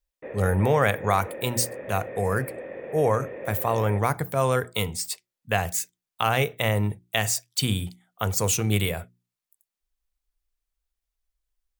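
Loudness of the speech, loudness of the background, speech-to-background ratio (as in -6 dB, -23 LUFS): -25.5 LUFS, -37.5 LUFS, 12.0 dB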